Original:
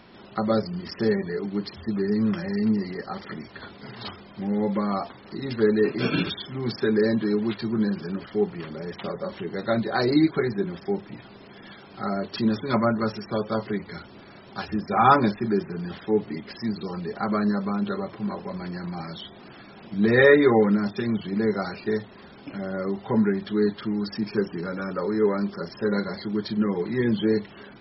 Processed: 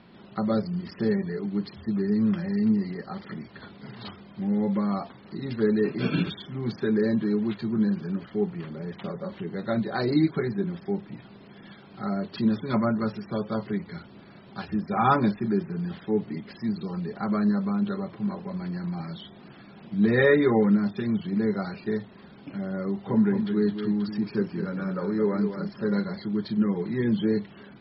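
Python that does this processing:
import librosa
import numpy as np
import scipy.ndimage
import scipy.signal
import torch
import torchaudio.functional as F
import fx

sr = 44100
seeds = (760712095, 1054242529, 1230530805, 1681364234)

y = fx.resample_bad(x, sr, factor=4, down='filtered', up='hold', at=(6.17, 9.84))
y = fx.echo_single(y, sr, ms=217, db=-8.0, at=(22.85, 26.03))
y = scipy.signal.sosfilt(scipy.signal.butter(8, 4800.0, 'lowpass', fs=sr, output='sos'), y)
y = fx.peak_eq(y, sr, hz=170.0, db=7.5, octaves=1.1)
y = F.gain(torch.from_numpy(y), -5.0).numpy()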